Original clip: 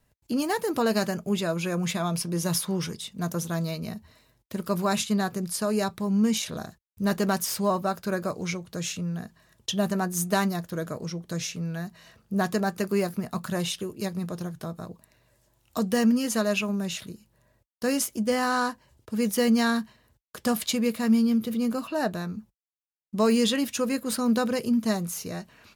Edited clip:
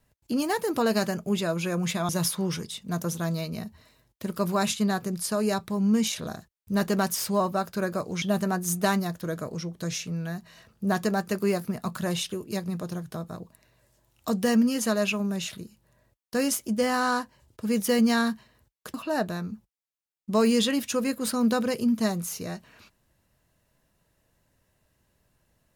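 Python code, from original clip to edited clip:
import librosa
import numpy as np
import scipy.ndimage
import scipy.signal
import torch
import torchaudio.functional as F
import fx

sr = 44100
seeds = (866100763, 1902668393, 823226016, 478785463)

y = fx.edit(x, sr, fx.cut(start_s=2.09, length_s=0.3),
    fx.cut(start_s=8.52, length_s=1.19),
    fx.cut(start_s=20.43, length_s=1.36), tone=tone)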